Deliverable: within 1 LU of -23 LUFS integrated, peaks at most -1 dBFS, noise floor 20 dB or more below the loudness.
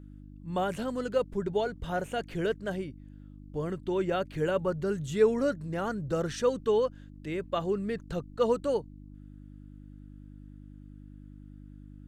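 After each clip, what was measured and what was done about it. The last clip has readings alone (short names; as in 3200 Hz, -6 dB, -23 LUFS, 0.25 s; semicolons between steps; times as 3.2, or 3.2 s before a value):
hum 50 Hz; harmonics up to 300 Hz; hum level -44 dBFS; loudness -31.0 LUFS; peak -12.0 dBFS; loudness target -23.0 LUFS
-> de-hum 50 Hz, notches 6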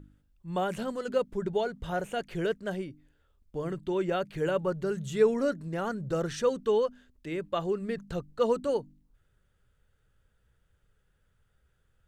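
hum none; loudness -31.0 LUFS; peak -12.0 dBFS; loudness target -23.0 LUFS
-> gain +8 dB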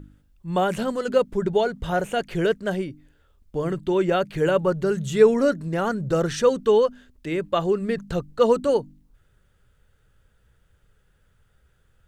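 loudness -23.0 LUFS; peak -4.0 dBFS; noise floor -63 dBFS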